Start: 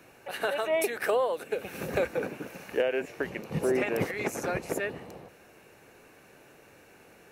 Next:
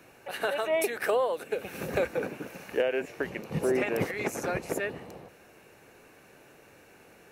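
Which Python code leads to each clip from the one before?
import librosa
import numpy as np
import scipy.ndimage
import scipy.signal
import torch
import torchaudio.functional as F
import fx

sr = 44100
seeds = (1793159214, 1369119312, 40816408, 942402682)

y = x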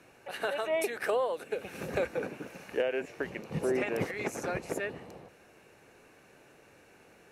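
y = scipy.signal.sosfilt(scipy.signal.butter(2, 11000.0, 'lowpass', fs=sr, output='sos'), x)
y = y * 10.0 ** (-3.0 / 20.0)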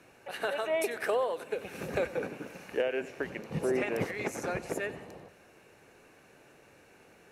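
y = fx.echo_feedback(x, sr, ms=93, feedback_pct=58, wet_db=-18)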